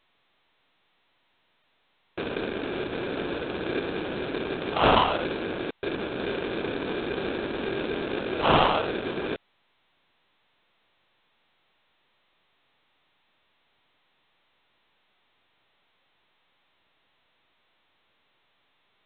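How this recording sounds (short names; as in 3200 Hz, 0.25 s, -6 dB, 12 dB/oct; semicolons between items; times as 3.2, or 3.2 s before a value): aliases and images of a low sample rate 2000 Hz, jitter 0%; G.726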